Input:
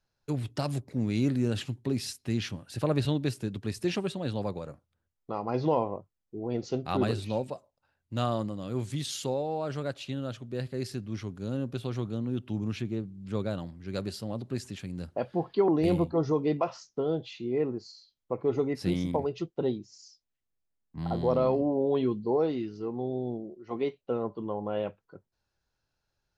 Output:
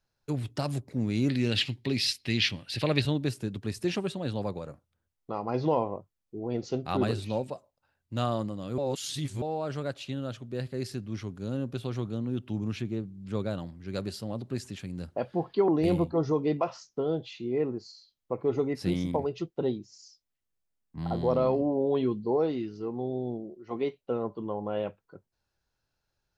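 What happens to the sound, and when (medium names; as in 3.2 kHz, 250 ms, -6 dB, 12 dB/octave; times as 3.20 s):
1.29–3.02 s: high-order bell 3.1 kHz +12.5 dB
8.78–9.42 s: reverse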